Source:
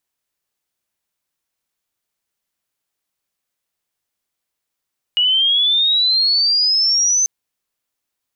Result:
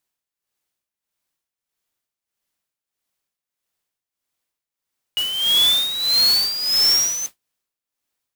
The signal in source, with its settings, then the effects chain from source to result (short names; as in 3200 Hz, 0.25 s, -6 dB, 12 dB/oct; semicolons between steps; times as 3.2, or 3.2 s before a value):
chirp logarithmic 2900 Hz -> 6200 Hz -12 dBFS -> -12.5 dBFS 2.09 s
tremolo 1.6 Hz, depth 71%; modulation noise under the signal 10 dB